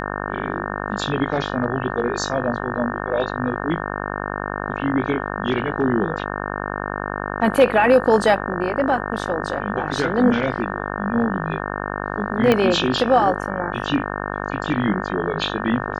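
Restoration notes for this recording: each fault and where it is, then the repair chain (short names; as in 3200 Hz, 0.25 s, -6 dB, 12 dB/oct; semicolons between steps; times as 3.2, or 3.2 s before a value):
buzz 50 Hz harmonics 36 -27 dBFS
12.52 pop -5 dBFS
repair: de-click; de-hum 50 Hz, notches 36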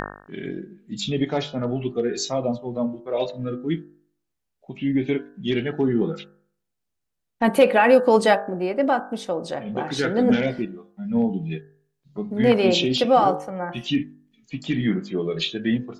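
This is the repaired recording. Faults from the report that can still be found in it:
12.52 pop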